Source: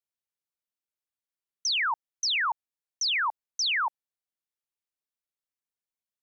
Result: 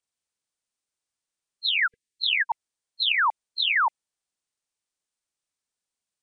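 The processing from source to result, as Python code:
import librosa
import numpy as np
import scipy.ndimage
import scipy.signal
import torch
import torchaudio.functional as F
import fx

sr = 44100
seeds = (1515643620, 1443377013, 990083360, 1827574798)

y = fx.freq_compress(x, sr, knee_hz=2000.0, ratio=1.5)
y = fx.brickwall_bandstop(y, sr, low_hz=490.0, high_hz=1600.0, at=(1.86, 2.49), fade=0.02)
y = y * 10.0 ** (5.5 / 20.0)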